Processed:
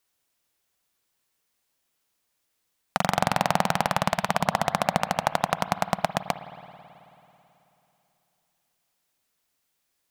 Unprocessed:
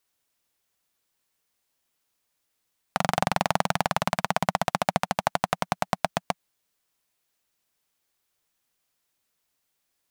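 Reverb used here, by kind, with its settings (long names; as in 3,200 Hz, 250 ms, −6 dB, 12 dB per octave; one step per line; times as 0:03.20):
spring reverb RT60 3.1 s, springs 54 ms, chirp 30 ms, DRR 12 dB
level +1 dB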